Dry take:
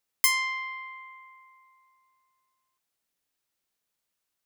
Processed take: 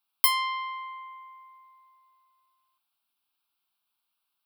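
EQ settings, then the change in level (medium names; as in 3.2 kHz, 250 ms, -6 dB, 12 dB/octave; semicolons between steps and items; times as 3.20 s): tone controls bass -14 dB, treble -2 dB; static phaser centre 1.9 kHz, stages 6; +5.5 dB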